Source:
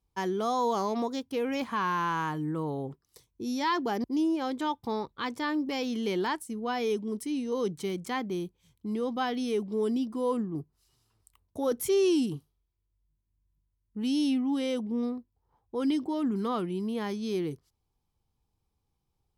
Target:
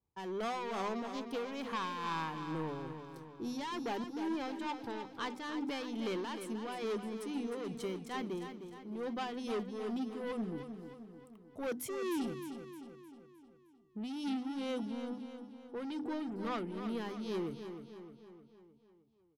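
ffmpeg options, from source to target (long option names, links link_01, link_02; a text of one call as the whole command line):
ffmpeg -i in.wav -filter_complex "[0:a]highpass=86,highshelf=frequency=3000:gain=-12,bandreject=frequency=50:width_type=h:width=6,bandreject=frequency=100:width_type=h:width=6,bandreject=frequency=150:width_type=h:width=6,bandreject=frequency=200:width_type=h:width=6,bandreject=frequency=250:width_type=h:width=6,bandreject=frequency=300:width_type=h:width=6,asoftclip=type=tanh:threshold=-30.5dB,tremolo=f=2.3:d=0.5,asplit=2[link_01][link_02];[link_02]aecho=0:1:308|616|924|1232|1540|1848:0.355|0.195|0.107|0.059|0.0325|0.0179[link_03];[link_01][link_03]amix=inputs=2:normalize=0,adynamicequalizer=threshold=0.002:dfrequency=1900:dqfactor=0.7:tfrequency=1900:tqfactor=0.7:attack=5:release=100:ratio=0.375:range=3.5:mode=boostabove:tftype=highshelf,volume=-2dB" out.wav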